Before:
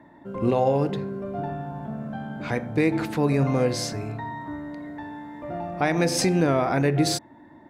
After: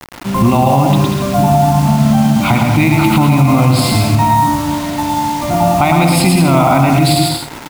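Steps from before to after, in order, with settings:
downward compressor 2.5 to 1, threshold −24 dBFS, peak gain reduction 6 dB
phaser with its sweep stopped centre 1,700 Hz, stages 6
bit-depth reduction 8 bits, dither none
bouncing-ball delay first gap 110 ms, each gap 0.7×, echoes 5
boost into a limiter +22.5 dB
level −1 dB

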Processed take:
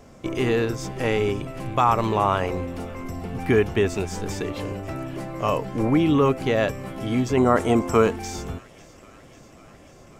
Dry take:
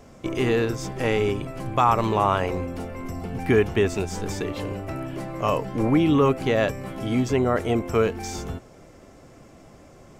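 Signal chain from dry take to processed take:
0:07.37–0:08.16: graphic EQ with 10 bands 250 Hz +5 dB, 1,000 Hz +8 dB, 8,000 Hz +9 dB
on a send: delay with a high-pass on its return 544 ms, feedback 74%, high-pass 1,800 Hz, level −20.5 dB

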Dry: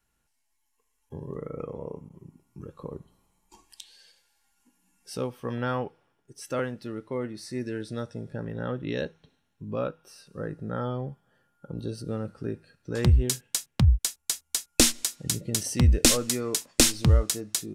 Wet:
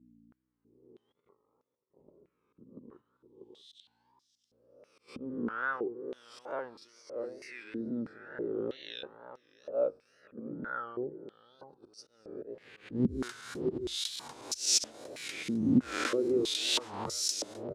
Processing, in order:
peak hold with a rise ahead of every peak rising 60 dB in 1.09 s
volume swells 155 ms
0:06.88–0:07.64: tilt shelving filter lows −6 dB, about 1,100 Hz
mains hum 60 Hz, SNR 19 dB
0:01.19–0:02.09: compressor whose output falls as the input rises −45 dBFS, ratio −0.5
noise gate −37 dBFS, range −7 dB
parametric band 360 Hz +7.5 dB 1 octave
slap from a distant wall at 110 metres, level −8 dB
tape wow and flutter 110 cents
band-pass on a step sequencer 3.1 Hz 240–5,500 Hz

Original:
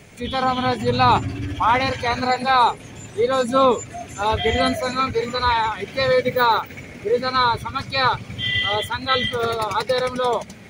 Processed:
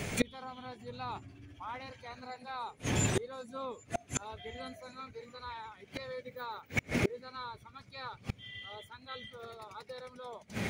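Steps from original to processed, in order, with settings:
gate with flip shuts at −24 dBFS, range −33 dB
level +8 dB

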